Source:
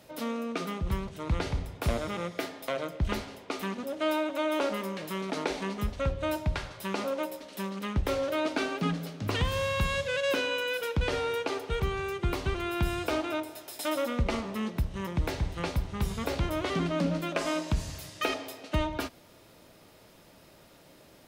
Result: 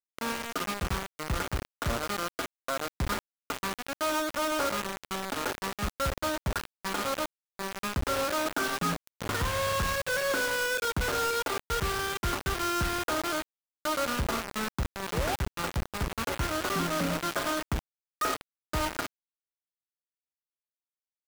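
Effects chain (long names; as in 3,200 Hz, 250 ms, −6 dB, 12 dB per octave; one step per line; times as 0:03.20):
sound drawn into the spectrogram rise, 0:15.12–0:15.36, 400–860 Hz −32 dBFS
transistor ladder low-pass 1,600 Hz, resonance 60%
log-companded quantiser 2 bits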